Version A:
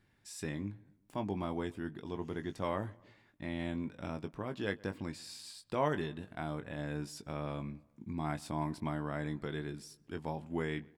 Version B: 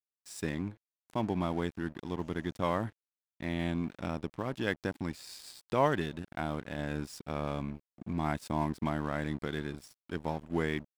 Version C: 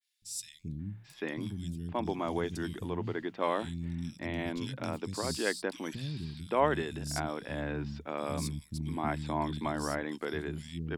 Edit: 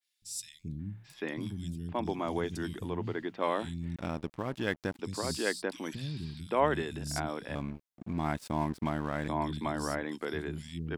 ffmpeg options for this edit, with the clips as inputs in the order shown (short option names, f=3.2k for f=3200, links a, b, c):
-filter_complex "[1:a]asplit=2[a][b];[2:a]asplit=3[c][d][e];[c]atrim=end=3.962[f];[a]atrim=start=3.958:end=4.992[g];[d]atrim=start=4.988:end=7.552[h];[b]atrim=start=7.548:end=9.282[i];[e]atrim=start=9.278[j];[f][g]acrossfade=d=0.004:c1=hsin:c2=hsin[k];[k][h]acrossfade=d=0.004:c1=hsin:c2=hsin[l];[l][i]acrossfade=d=0.004:c1=hsin:c2=hsin[m];[m][j]acrossfade=d=0.004:c1=hsin:c2=hsin"